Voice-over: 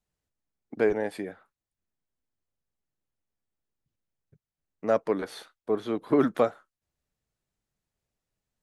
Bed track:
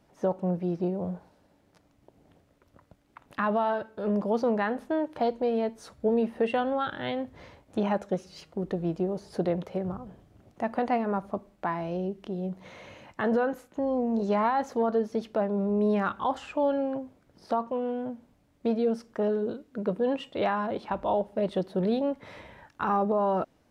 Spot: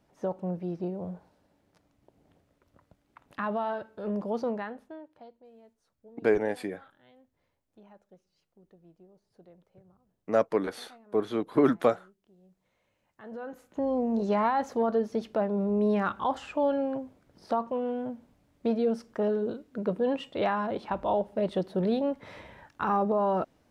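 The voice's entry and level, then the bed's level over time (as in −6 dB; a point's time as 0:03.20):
5.45 s, 0.0 dB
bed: 0:04.47 −4.5 dB
0:05.43 −28 dB
0:12.99 −28 dB
0:13.79 −0.5 dB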